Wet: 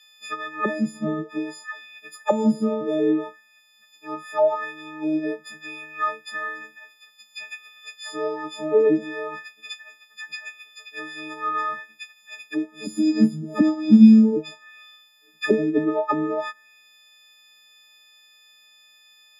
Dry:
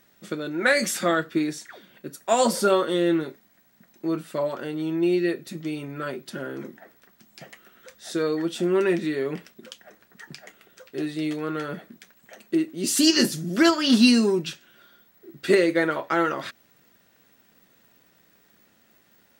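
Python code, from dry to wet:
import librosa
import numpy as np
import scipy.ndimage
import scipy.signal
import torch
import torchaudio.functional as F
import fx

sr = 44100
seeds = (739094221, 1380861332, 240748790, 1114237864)

y = fx.freq_snap(x, sr, grid_st=6)
y = fx.auto_wah(y, sr, base_hz=210.0, top_hz=3400.0, q=2.6, full_db=-15.0, direction='down')
y = y * 10.0 ** (7.5 / 20.0)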